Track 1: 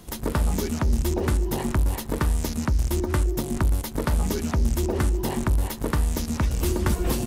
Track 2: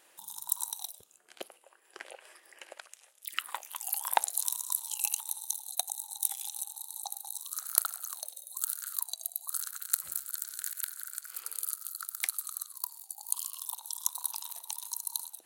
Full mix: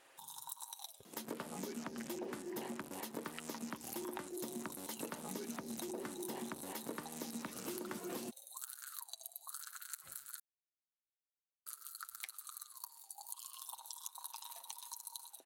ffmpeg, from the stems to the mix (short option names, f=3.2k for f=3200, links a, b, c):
-filter_complex "[0:a]highpass=f=200:w=0.5412,highpass=f=200:w=1.3066,adelay=1050,volume=-8.5dB[a];[1:a]aemphasis=mode=reproduction:type=cd,aecho=1:1:7.5:0.51,acompressor=threshold=-45dB:ratio=2,volume=-0.5dB,asplit=3[b][c][d];[b]atrim=end=10.4,asetpts=PTS-STARTPTS,afade=t=out:st=10.396:d=0.004:c=hsin[e];[c]atrim=start=10.4:end=11.66,asetpts=PTS-STARTPTS,volume=0[f];[d]atrim=start=11.66,asetpts=PTS-STARTPTS,afade=t=in:d=0.004:c=hsin[g];[e][f][g]concat=n=3:v=0:a=1[h];[a][h]amix=inputs=2:normalize=0,acompressor=threshold=-40dB:ratio=10"